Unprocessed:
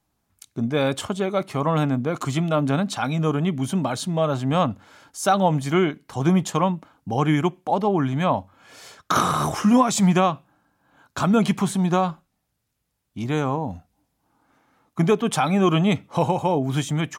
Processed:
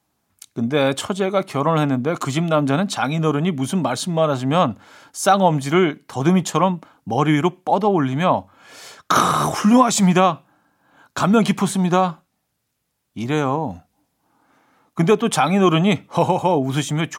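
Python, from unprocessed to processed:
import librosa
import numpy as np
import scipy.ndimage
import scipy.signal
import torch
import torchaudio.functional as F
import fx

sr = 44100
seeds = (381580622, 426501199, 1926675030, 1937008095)

y = fx.highpass(x, sr, hz=150.0, slope=6)
y = F.gain(torch.from_numpy(y), 4.5).numpy()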